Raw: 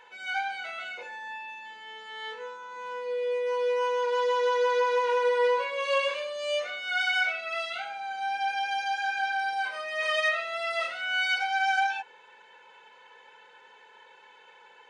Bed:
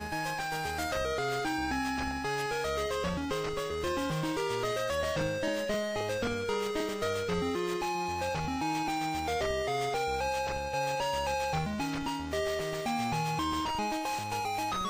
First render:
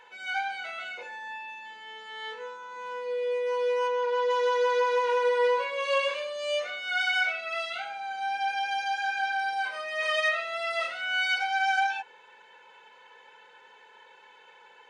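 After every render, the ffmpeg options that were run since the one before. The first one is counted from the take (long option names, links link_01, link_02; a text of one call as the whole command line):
ffmpeg -i in.wav -filter_complex "[0:a]asplit=3[link_01][link_02][link_03];[link_01]afade=type=out:start_time=3.87:duration=0.02[link_04];[link_02]lowpass=frequency=3100:poles=1,afade=type=in:start_time=3.87:duration=0.02,afade=type=out:start_time=4.29:duration=0.02[link_05];[link_03]afade=type=in:start_time=4.29:duration=0.02[link_06];[link_04][link_05][link_06]amix=inputs=3:normalize=0" out.wav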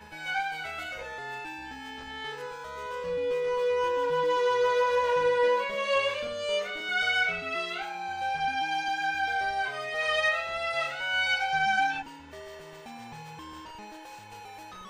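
ffmpeg -i in.wav -i bed.wav -filter_complex "[1:a]volume=-12.5dB[link_01];[0:a][link_01]amix=inputs=2:normalize=0" out.wav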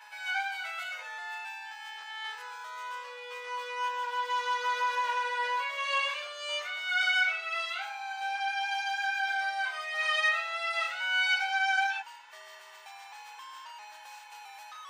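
ffmpeg -i in.wav -af "highpass=frequency=830:width=0.5412,highpass=frequency=830:width=1.3066" out.wav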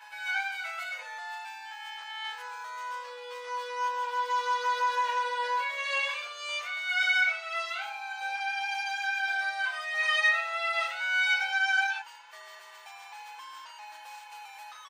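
ffmpeg -i in.wav -af "aecho=1:1:5.9:0.51" out.wav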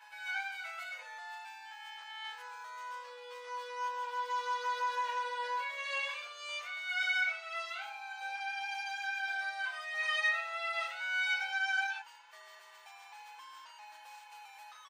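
ffmpeg -i in.wav -af "volume=-6.5dB" out.wav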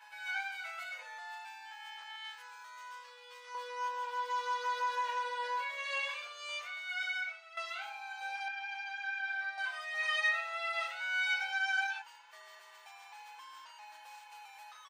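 ffmpeg -i in.wav -filter_complex "[0:a]asettb=1/sr,asplit=3[link_01][link_02][link_03];[link_01]atrim=end=2.164[link_04];[link_02]atrim=start=2.16:end=3.55,asetpts=PTS-STARTPTS,afade=type=in:duration=0.004:curve=qsin,afade=type=out:start_time=1.386:duration=0.004:curve=qsin,highpass=frequency=1500:poles=1[link_05];[link_03]atrim=start=3.546[link_06];[link_04][link_05]acrossfade=duration=0.004:curve1=hsin:curve2=qsin[link_07];[link_07][link_06]acrossfade=duration=0.004:curve1=qsin:curve2=hsin,asettb=1/sr,asplit=3[link_08][link_09][link_10];[link_08]atrim=end=8.484[link_11];[link_09]atrim=start=8.48:end=9.58,asetpts=PTS-STARTPTS,afade=type=in:duration=0.004:curve=qsin,afade=type=out:start_time=1.096:duration=0.004:curve=qsin,bandpass=frequency=1600:width_type=q:width=0.88[link_12];[link_10]atrim=start=9.576[link_13];[link_11][link_12]acrossfade=duration=0.004:curve1=hsin:curve2=qsin[link_14];[link_14][link_13]acrossfade=duration=0.004:curve1=qsin:curve2=hsin,asplit=2[link_15][link_16];[link_15]atrim=end=7.57,asetpts=PTS-STARTPTS,afade=type=out:start_time=6.54:duration=1.03:silence=0.223872[link_17];[link_16]atrim=start=7.57,asetpts=PTS-STARTPTS,afade=type=in:duration=0.004:curve=hsin:silence=0.223872[link_18];[link_17][link_18]concat=n=2:v=0:a=1" out.wav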